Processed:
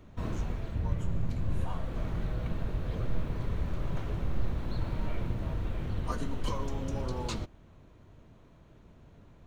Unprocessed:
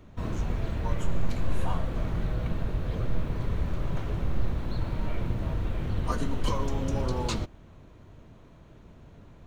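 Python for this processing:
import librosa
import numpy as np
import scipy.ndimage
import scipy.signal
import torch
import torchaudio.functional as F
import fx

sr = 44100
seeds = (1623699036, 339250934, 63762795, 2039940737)

y = fx.peak_eq(x, sr, hz=97.0, db=10.0, octaves=2.9, at=(0.74, 1.64))
y = fx.rider(y, sr, range_db=4, speed_s=0.5)
y = F.gain(torch.from_numpy(y), -5.5).numpy()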